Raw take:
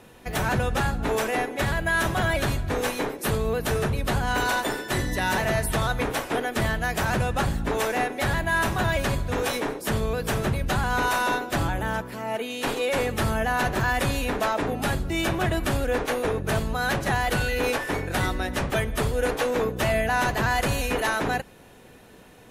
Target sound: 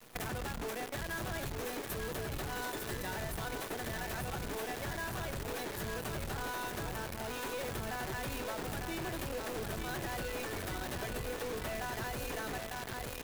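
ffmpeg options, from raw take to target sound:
ffmpeg -i in.wav -filter_complex "[0:a]aeval=exprs='0.188*(cos(1*acos(clip(val(0)/0.188,-1,1)))-cos(1*PI/2))+0.00668*(cos(2*acos(clip(val(0)/0.188,-1,1)))-cos(2*PI/2))+0.00376*(cos(5*acos(clip(val(0)/0.188,-1,1)))-cos(5*PI/2))+0.00299*(cos(7*acos(clip(val(0)/0.188,-1,1)))-cos(7*PI/2))+0.00841*(cos(8*acos(clip(val(0)/0.188,-1,1)))-cos(8*PI/2))':channel_layout=same,adynamicequalizer=threshold=0.00891:dfrequency=360:dqfactor=3.9:tfrequency=360:tqfactor=3.9:attack=5:release=100:ratio=0.375:range=2:mode=boostabove:tftype=bell,asplit=2[link_01][link_02];[link_02]asoftclip=type=tanh:threshold=-28.5dB,volume=-8.5dB[link_03];[link_01][link_03]amix=inputs=2:normalize=0,atempo=1.7,equalizer=frequency=13000:width_type=o:width=0.24:gain=8,asplit=2[link_04][link_05];[link_05]aecho=0:1:899|1798|2697|3596|4495|5394:0.501|0.241|0.115|0.0554|0.0266|0.0128[link_06];[link_04][link_06]amix=inputs=2:normalize=0,acrusher=bits=5:dc=4:mix=0:aa=0.000001,acompressor=threshold=-30dB:ratio=10,volume=-6dB" out.wav

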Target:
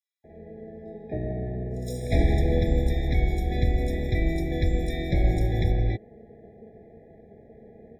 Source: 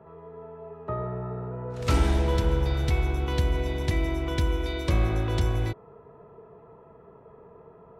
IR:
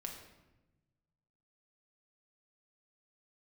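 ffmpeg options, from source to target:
-filter_complex "[0:a]asplit=4[link_01][link_02][link_03][link_04];[link_02]asetrate=22050,aresample=44100,atempo=2,volume=-3dB[link_05];[link_03]asetrate=52444,aresample=44100,atempo=0.840896,volume=-17dB[link_06];[link_04]asetrate=88200,aresample=44100,atempo=0.5,volume=-15dB[link_07];[link_01][link_05][link_06][link_07]amix=inputs=4:normalize=0,acrossover=split=4900[link_08][link_09];[link_08]adelay=240[link_10];[link_10][link_09]amix=inputs=2:normalize=0,afftfilt=real='re*eq(mod(floor(b*sr/1024/820),2),0)':imag='im*eq(mod(floor(b*sr/1024/820),2),0)':win_size=1024:overlap=0.75"

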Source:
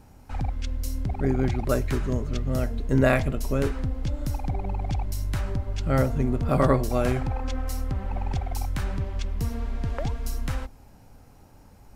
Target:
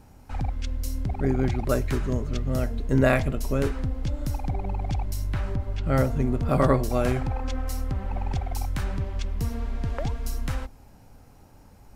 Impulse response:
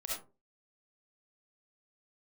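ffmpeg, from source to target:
-filter_complex "[0:a]asettb=1/sr,asplit=3[link_01][link_02][link_03];[link_01]atrim=end=5.274[link_04];[link_02]atrim=start=5.27:end=5.92,asetpts=PTS-STARTPTS,afade=type=in:duration=0.004:curve=qsin,afade=type=out:start_time=0.646:duration=0.004:curve=qsin,acrossover=split=3900[link_05][link_06];[link_06]acompressor=threshold=-57dB:ratio=4:attack=1:release=60[link_07];[link_05][link_07]amix=inputs=2:normalize=0[link_08];[link_03]atrim=start=5.916[link_09];[link_04][link_08]acrossfade=duration=0.004:curve1=hsin:curve2=qsin[link_10];[link_10][link_09]acrossfade=duration=0.004:curve1=qsin:curve2=hsin"

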